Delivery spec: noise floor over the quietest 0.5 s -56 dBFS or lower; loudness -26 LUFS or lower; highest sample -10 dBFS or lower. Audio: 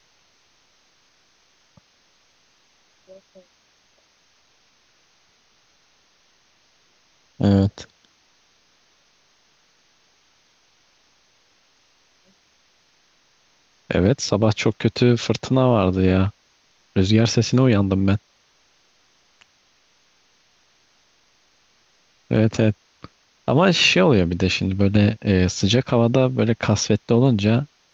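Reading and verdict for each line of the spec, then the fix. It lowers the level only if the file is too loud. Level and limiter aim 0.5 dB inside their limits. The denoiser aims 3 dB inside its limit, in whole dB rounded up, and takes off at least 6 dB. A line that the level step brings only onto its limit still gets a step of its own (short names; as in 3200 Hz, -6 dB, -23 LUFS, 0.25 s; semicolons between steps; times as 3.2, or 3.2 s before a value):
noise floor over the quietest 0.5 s -61 dBFS: OK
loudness -19.0 LUFS: fail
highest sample -4.5 dBFS: fail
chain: gain -7.5 dB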